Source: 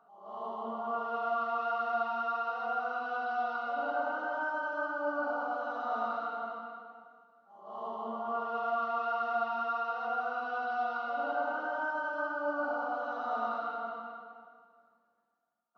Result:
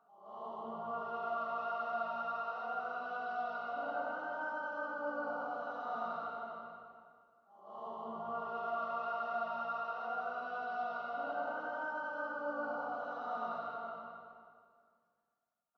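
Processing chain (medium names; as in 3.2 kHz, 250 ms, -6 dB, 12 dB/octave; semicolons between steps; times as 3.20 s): on a send: frequency-shifting echo 92 ms, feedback 35%, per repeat -57 Hz, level -10 dB; on the sum: trim -6 dB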